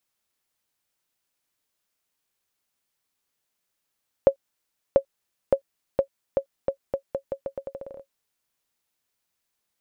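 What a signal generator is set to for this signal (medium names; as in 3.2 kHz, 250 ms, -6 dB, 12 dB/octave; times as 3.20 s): bouncing ball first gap 0.69 s, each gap 0.82, 548 Hz, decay 90 ms -5 dBFS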